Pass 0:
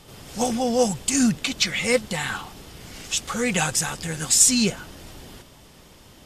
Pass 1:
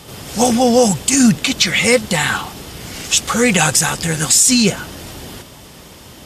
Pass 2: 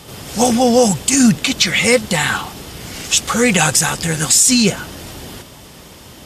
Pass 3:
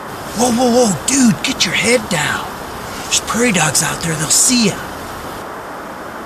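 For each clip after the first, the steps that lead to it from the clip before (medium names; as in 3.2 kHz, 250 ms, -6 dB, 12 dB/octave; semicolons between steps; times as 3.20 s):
high-pass 50 Hz; treble shelf 10 kHz +3.5 dB; loudness maximiser +11.5 dB; trim -1 dB
no audible change
band noise 180–1500 Hz -28 dBFS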